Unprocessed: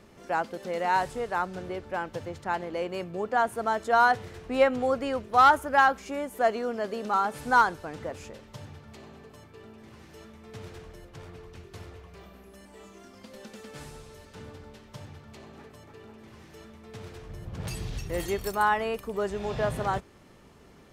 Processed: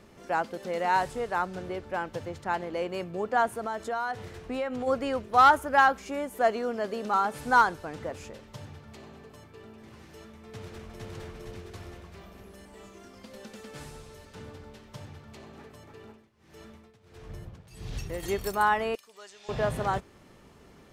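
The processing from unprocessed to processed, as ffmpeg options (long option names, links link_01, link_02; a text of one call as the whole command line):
ffmpeg -i in.wav -filter_complex "[0:a]asplit=3[link_01][link_02][link_03];[link_01]afade=type=out:start_time=3.52:duration=0.02[link_04];[link_02]acompressor=threshold=-29dB:ratio=4:attack=3.2:release=140:knee=1:detection=peak,afade=type=in:start_time=3.52:duration=0.02,afade=type=out:start_time=4.86:duration=0.02[link_05];[link_03]afade=type=in:start_time=4.86:duration=0.02[link_06];[link_04][link_05][link_06]amix=inputs=3:normalize=0,asplit=2[link_07][link_08];[link_08]afade=type=in:start_time=10.26:duration=0.01,afade=type=out:start_time=11.12:duration=0.01,aecho=0:1:460|920|1380|1840|2300|2760|3220|3680|4140|4600:1|0.6|0.36|0.216|0.1296|0.07776|0.046656|0.0279936|0.0167962|0.0100777[link_09];[link_07][link_09]amix=inputs=2:normalize=0,asplit=3[link_10][link_11][link_12];[link_10]afade=type=out:start_time=16.11:duration=0.02[link_13];[link_11]tremolo=f=1.5:d=0.91,afade=type=in:start_time=16.11:duration=0.02,afade=type=out:start_time=18.22:duration=0.02[link_14];[link_12]afade=type=in:start_time=18.22:duration=0.02[link_15];[link_13][link_14][link_15]amix=inputs=3:normalize=0,asettb=1/sr,asplit=3[link_16][link_17][link_18];[link_16]atrim=end=18.954[link_19];[link_17]atrim=start=18.95:end=19.49,asetpts=PTS-STARTPTS,afade=type=in:duration=0.004:curve=qsin,afade=type=out:start_time=0.536:duration=0.004:curve=qsin,bandpass=frequency=5300:width_type=q:width=1.1[link_20];[link_18]atrim=start=19.486[link_21];[link_19][link_20]acrossfade=duration=0.004:curve1=hsin:curve2=qsin[link_22];[link_22][link_21]acrossfade=duration=0.004:curve1=qsin:curve2=hsin" out.wav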